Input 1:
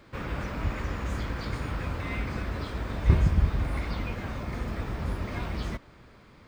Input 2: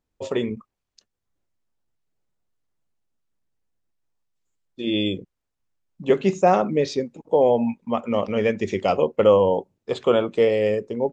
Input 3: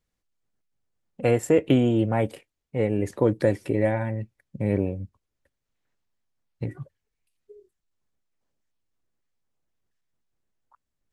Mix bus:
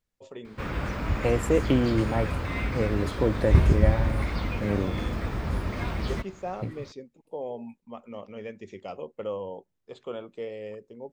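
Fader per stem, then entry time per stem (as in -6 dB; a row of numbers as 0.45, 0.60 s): +2.5, -17.5, -3.5 dB; 0.45, 0.00, 0.00 s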